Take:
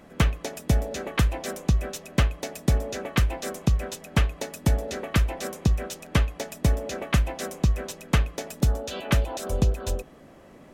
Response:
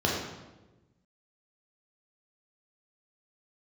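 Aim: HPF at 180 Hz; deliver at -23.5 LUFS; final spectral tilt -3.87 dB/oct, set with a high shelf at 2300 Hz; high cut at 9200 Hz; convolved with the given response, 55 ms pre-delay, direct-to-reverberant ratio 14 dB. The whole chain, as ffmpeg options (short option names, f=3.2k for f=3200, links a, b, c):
-filter_complex "[0:a]highpass=180,lowpass=9.2k,highshelf=f=2.3k:g=4.5,asplit=2[a][b];[1:a]atrim=start_sample=2205,adelay=55[c];[b][c]afir=irnorm=-1:irlink=0,volume=-26.5dB[d];[a][d]amix=inputs=2:normalize=0,volume=6.5dB"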